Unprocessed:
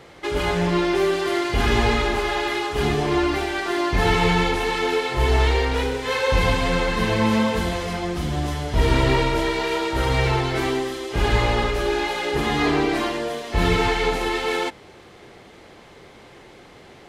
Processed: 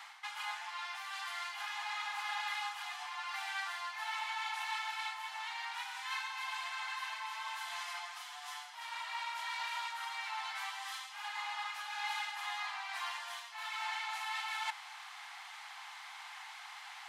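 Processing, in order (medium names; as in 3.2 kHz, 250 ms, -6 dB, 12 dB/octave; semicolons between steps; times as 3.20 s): reverse; compression 5:1, threshold -36 dBFS, peak gain reduction 20.5 dB; reverse; steep high-pass 790 Hz 72 dB/octave; trim +1.5 dB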